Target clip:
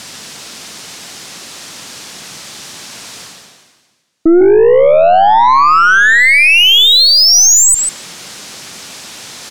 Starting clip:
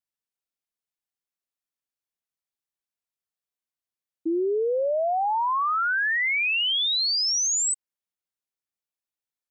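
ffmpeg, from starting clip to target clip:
-filter_complex "[0:a]highpass=160,lowpass=5400,areverse,acompressor=mode=upward:threshold=0.0251:ratio=2.5,areverse,bass=f=250:g=8,treble=f=4000:g=8,asplit=2[s0][s1];[s1]adelay=146,lowpass=f=2900:p=1,volume=0.447,asplit=2[s2][s3];[s3]adelay=146,lowpass=f=2900:p=1,volume=0.15,asplit=2[s4][s5];[s5]adelay=146,lowpass=f=2900:p=1,volume=0.15[s6];[s0][s2][s4][s6]amix=inputs=4:normalize=0,aeval=exprs='0.168*(cos(1*acos(clip(val(0)/0.168,-1,1)))-cos(1*PI/2))+0.0106*(cos(6*acos(clip(val(0)/0.168,-1,1)))-cos(6*PI/2))':c=same,alimiter=level_in=22.4:limit=0.891:release=50:level=0:latency=1,volume=0.891"

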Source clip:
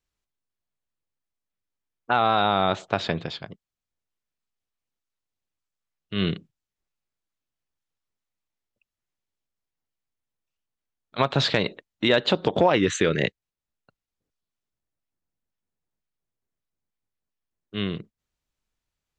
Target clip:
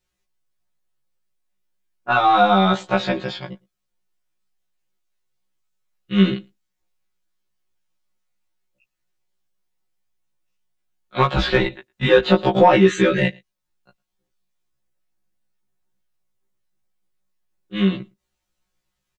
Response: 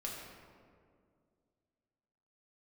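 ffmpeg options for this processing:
-filter_complex "[0:a]asplit=2[s0][s1];[s1]adelay=110.8,volume=0.0355,highshelf=f=4000:g=-2.49[s2];[s0][s2]amix=inputs=2:normalize=0,asplit=2[s3][s4];[s4]asoftclip=type=tanh:threshold=0.168,volume=0.501[s5];[s3][s5]amix=inputs=2:normalize=0,asettb=1/sr,asplit=3[s6][s7][s8];[s6]atrim=end=11.374[s9];[s7]atrim=start=11.37:end=12.25,asetpts=PTS-STARTPTS,afade=t=in:d=0.004:c=qsin,afade=t=out:st=0.876:d=0.004:c=qsin,afreqshift=-87[s10];[s8]atrim=start=12.246[s11];[s9][s10]acrossfade=d=0.004:c1=hsin:c2=qsin[s12];[s12][s11]acrossfade=d=0.004:c1=qsin:c2=hsin,aecho=1:1:5.5:0.88,acrossover=split=2800[s13][s14];[s14]acompressor=threshold=0.0251:ratio=4:attack=1:release=60[s15];[s13][s15]amix=inputs=2:normalize=0,afftfilt=real='re*1.73*eq(mod(b,3),0)':imag='im*1.73*eq(mod(b,3),0)':win_size=2048:overlap=0.75,volume=1.41"

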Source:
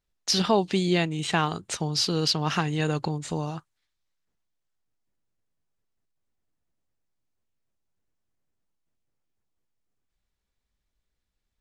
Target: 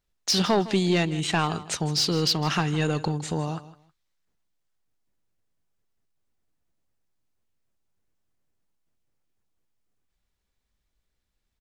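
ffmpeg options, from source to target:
-af "asoftclip=type=tanh:threshold=0.15,aecho=1:1:159|318:0.15|0.0329,volume=1.33"

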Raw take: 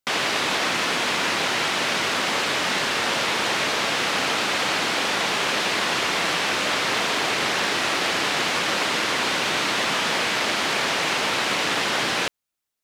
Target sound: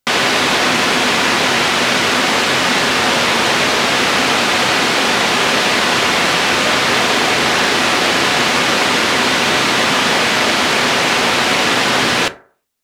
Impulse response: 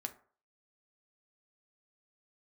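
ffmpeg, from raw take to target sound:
-filter_complex "[0:a]asplit=2[s0][s1];[1:a]atrim=start_sample=2205,lowshelf=f=370:g=6[s2];[s1][s2]afir=irnorm=-1:irlink=0,volume=1.68[s3];[s0][s3]amix=inputs=2:normalize=0,volume=1.19"

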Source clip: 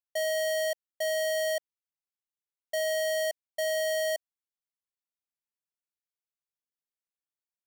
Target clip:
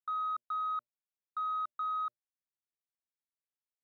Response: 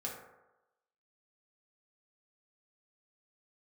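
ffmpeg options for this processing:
-af "lowpass=f=1100:w=0.5412,lowpass=f=1100:w=1.3066,bandreject=f=60:t=h:w=6,bandreject=f=120:t=h:w=6,bandreject=f=180:t=h:w=6,bandreject=f=240:t=h:w=6,bandreject=f=300:t=h:w=6,asetrate=88200,aresample=44100,volume=0.596"

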